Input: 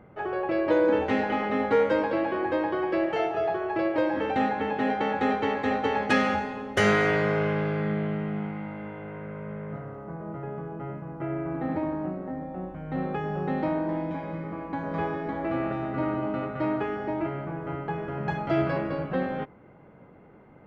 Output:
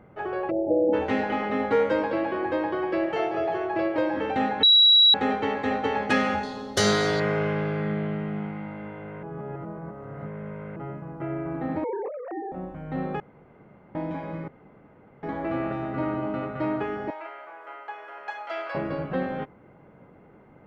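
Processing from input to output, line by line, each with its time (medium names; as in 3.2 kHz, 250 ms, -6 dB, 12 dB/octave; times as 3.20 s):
0.51–0.94 s: spectral selection erased 890–8200 Hz
2.77–3.46 s: echo throw 390 ms, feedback 10%, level -10 dB
4.63–5.14 s: bleep 3.89 kHz -12.5 dBFS
6.43–7.20 s: resonant high shelf 3.2 kHz +8.5 dB, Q 3
9.23–10.76 s: reverse
11.84–12.52 s: formants replaced by sine waves
13.20–13.95 s: room tone
14.48–15.23 s: room tone
17.10–18.75 s: Bessel high-pass 890 Hz, order 4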